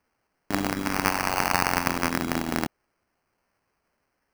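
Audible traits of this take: phasing stages 2, 0.51 Hz, lowest notch 360–1000 Hz; aliases and images of a low sample rate 3.6 kHz, jitter 0%

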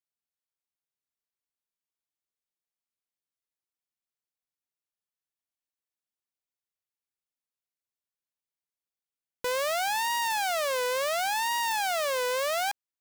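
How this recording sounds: noise floor -94 dBFS; spectral tilt +0.5 dB/octave

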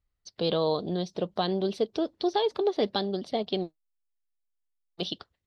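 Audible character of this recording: noise floor -81 dBFS; spectral tilt -4.5 dB/octave

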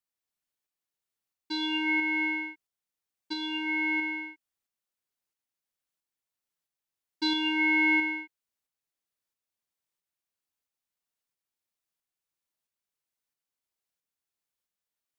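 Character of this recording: tremolo saw up 1.5 Hz, depth 35%

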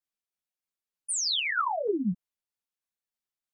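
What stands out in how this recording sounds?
tremolo saw down 3.2 Hz, depth 35%; a shimmering, thickened sound

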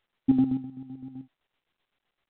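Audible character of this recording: chopped level 7.8 Hz, depth 60%, duty 45%; µ-law

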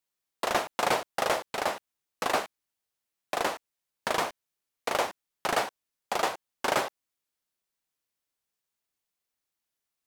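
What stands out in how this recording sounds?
noise floor -86 dBFS; spectral tilt -2.0 dB/octave

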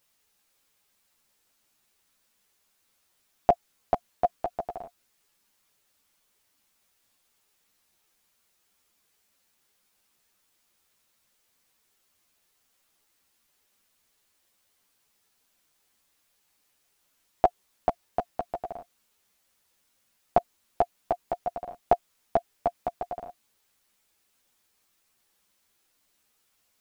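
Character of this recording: a quantiser's noise floor 12-bit, dither triangular; a shimmering, thickened sound

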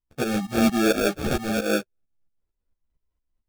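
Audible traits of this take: phasing stages 6, 1.2 Hz, lowest notch 510–1200 Hz; aliases and images of a low sample rate 1 kHz, jitter 0%; tremolo saw up 4.4 Hz, depth 80%; a shimmering, thickened sound

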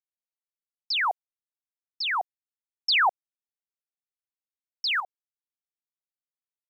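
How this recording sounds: a quantiser's noise floor 10-bit, dither none; tremolo saw up 1.6 Hz, depth 75%

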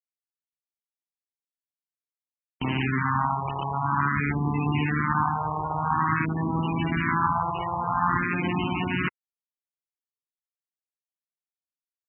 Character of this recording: phasing stages 4, 0.49 Hz, lowest notch 250–1500 Hz; a quantiser's noise floor 8-bit, dither none; MP3

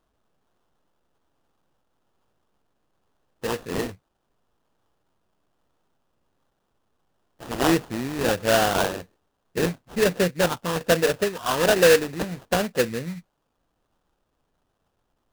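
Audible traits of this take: a quantiser's noise floor 12-bit, dither triangular; phasing stages 4, 1.2 Hz, lowest notch 480–1700 Hz; aliases and images of a low sample rate 2.2 kHz, jitter 20%

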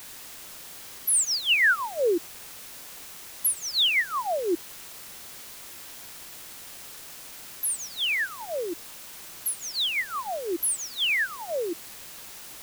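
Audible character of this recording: phasing stages 4, 4 Hz, lowest notch 680–1500 Hz; a quantiser's noise floor 8-bit, dither triangular

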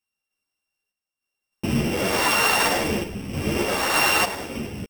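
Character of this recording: a buzz of ramps at a fixed pitch in blocks of 16 samples; random-step tremolo 3.3 Hz, depth 75%; a shimmering, thickened sound

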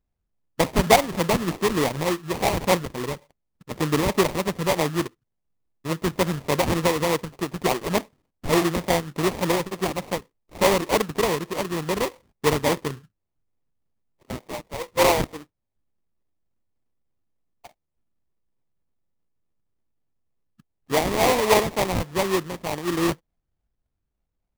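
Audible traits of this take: phasing stages 6, 3.4 Hz, lowest notch 740–2300 Hz; aliases and images of a low sample rate 1.5 kHz, jitter 20%

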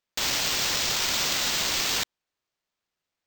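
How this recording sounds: aliases and images of a low sample rate 11 kHz, jitter 0%

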